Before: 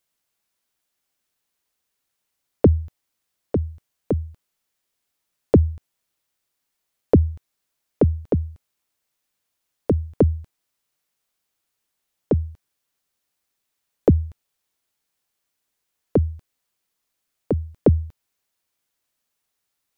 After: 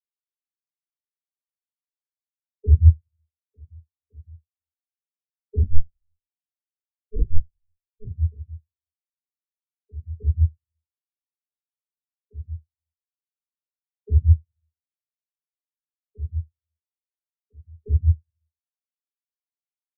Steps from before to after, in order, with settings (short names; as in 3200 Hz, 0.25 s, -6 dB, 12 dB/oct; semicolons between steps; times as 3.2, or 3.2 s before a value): treble ducked by the level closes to 640 Hz, closed at -20 dBFS; graphic EQ 125/250/500/1000 Hz -6/-7/-7/+4 dB; requantised 6-bit, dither none; outdoor echo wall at 15 m, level -24 dB; shoebox room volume 180 m³, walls mixed, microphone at 1.5 m; 5.62–8.11 LPC vocoder at 8 kHz pitch kept; spectral expander 4:1; gain +1.5 dB